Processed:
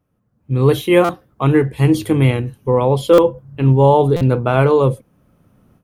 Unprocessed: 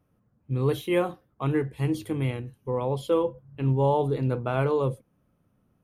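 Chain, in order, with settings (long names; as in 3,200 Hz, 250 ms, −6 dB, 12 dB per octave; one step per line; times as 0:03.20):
automatic gain control gain up to 16.5 dB
buffer that repeats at 0:01.04/0:03.13/0:04.16, samples 256, times 8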